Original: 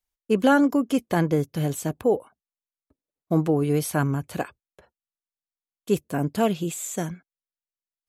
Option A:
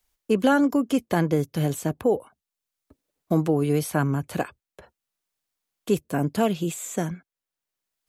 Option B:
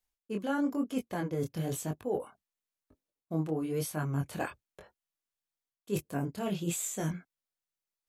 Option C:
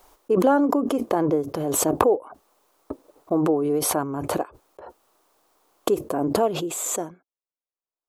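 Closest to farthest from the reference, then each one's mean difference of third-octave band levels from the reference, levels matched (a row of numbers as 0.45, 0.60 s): A, B, C; 1.5, 4.5, 7.0 dB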